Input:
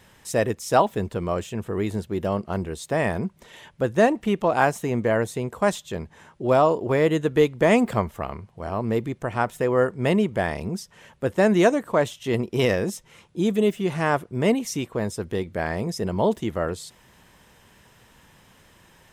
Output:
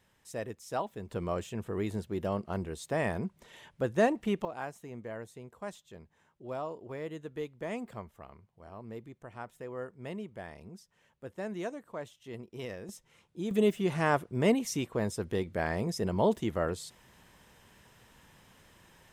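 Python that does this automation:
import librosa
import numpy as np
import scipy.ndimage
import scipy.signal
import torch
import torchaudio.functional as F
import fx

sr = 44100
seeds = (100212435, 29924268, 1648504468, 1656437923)

y = fx.gain(x, sr, db=fx.steps((0.0, -15.5), (1.09, -7.5), (4.45, -19.5), (12.89, -13.0), (13.51, -5.0)))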